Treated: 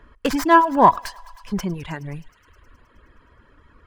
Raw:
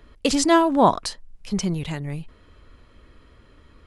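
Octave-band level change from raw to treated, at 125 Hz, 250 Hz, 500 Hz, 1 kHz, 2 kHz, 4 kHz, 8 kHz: -2.5 dB, -1.5 dB, -0.5 dB, +5.5 dB, +5.0 dB, -6.0 dB, -9.0 dB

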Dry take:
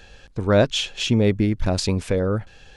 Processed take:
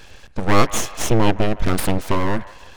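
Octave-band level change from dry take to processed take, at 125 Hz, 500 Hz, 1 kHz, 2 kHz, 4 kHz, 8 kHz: -1.0 dB, -1.5 dB, +10.0 dB, +3.5 dB, -3.5 dB, +6.0 dB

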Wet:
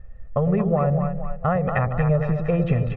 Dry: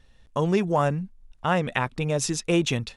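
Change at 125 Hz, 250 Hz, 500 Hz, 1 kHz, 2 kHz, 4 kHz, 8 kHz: +7.5 dB, +3.0 dB, +2.5 dB, +0.5 dB, -3.0 dB, under -20 dB, under -40 dB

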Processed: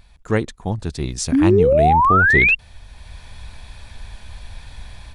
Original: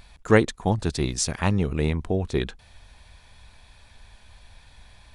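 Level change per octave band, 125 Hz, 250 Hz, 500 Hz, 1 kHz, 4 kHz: +4.0 dB, +6.0 dB, +7.5 dB, +15.5 dB, +1.0 dB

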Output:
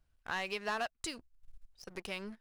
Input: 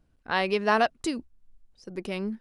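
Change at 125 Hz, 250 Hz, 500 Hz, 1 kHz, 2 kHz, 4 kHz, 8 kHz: -14.0 dB, -15.5 dB, -14.5 dB, -13.0 dB, -9.0 dB, -7.0 dB, -2.5 dB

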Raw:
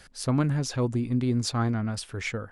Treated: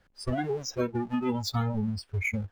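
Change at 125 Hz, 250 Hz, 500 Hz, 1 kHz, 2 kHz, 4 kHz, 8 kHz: -5.5 dB, -3.5 dB, +0.5 dB, -0.5 dB, +1.0 dB, -2.5 dB, -6.0 dB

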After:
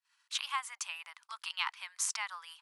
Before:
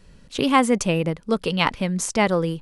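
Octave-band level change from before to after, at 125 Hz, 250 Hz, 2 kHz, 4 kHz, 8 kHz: under -40 dB, under -40 dB, -12.5 dB, -9.0 dB, -6.5 dB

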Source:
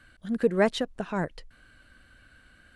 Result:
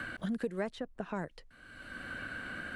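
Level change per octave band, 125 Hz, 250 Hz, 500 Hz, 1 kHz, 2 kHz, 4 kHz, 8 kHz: -7.5 dB, -8.0 dB, -12.0 dB, -9.0 dB, -2.0 dB, -10.5 dB, -11.0 dB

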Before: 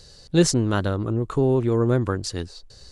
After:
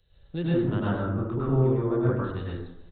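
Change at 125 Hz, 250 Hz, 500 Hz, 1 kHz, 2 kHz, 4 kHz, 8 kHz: -2.5 dB, -4.0 dB, -5.0 dB, -3.5 dB, -5.5 dB, under -15 dB, under -40 dB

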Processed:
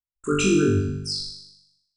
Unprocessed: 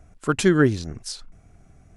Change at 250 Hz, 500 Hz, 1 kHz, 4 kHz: -0.5 dB, -1.0 dB, -4.0 dB, +5.0 dB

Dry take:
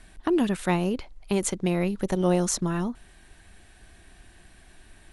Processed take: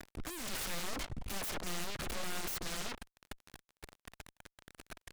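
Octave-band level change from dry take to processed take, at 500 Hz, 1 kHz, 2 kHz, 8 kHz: -19.5 dB, -11.5 dB, -6.0 dB, -9.0 dB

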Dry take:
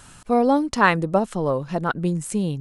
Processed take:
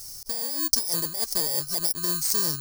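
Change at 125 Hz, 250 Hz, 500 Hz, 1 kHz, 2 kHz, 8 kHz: -14.0 dB, -17.0 dB, -17.0 dB, -19.5 dB, -17.5 dB, +12.5 dB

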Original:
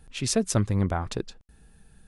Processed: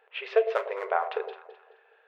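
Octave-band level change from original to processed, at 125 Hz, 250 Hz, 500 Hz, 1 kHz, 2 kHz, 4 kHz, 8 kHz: under -40 dB, under -20 dB, +5.0 dB, +5.5 dB, +4.5 dB, -8.5 dB, under -35 dB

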